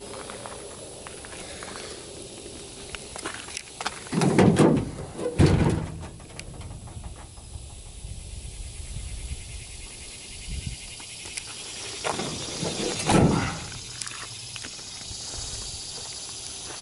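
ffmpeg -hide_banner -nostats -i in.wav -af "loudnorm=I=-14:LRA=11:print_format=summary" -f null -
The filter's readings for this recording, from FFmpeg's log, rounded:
Input Integrated:    -29.1 LUFS
Input True Peak:      -5.9 dBTP
Input LRA:            13.7 LU
Input Threshold:     -39.6 LUFS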